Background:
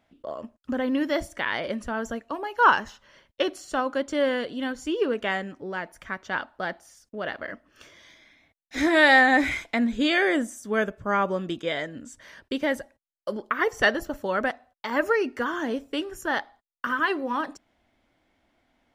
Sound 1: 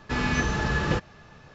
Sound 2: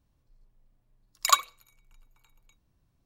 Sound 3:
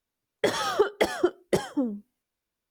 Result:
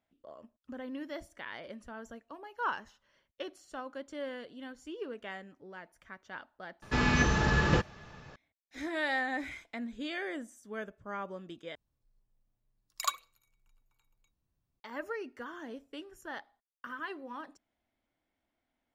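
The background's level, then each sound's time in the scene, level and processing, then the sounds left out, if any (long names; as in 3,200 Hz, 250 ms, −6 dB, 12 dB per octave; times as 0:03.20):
background −15.5 dB
0:06.82: mix in 1 −1 dB
0:11.75: overwrite with 2 −11 dB
not used: 3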